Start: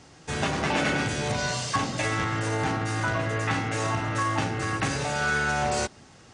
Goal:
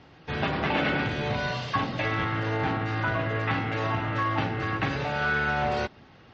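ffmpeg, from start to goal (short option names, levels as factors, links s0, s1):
-af "lowpass=f=3800:w=0.5412,lowpass=f=3800:w=1.3066" -ar 48000 -c:a libmp3lame -b:a 40k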